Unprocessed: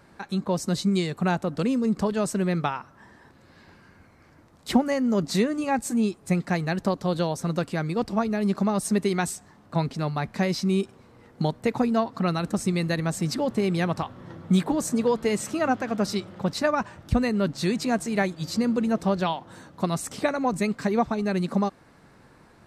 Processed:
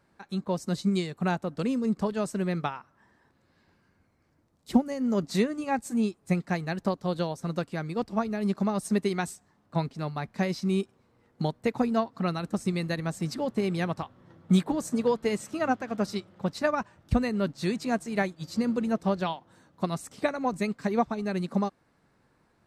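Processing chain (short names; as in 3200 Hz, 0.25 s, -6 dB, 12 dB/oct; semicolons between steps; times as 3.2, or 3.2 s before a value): 2.76–4.99 bell 1500 Hz +3 dB -> -8 dB 2.4 oct; upward expander 1.5:1, over -41 dBFS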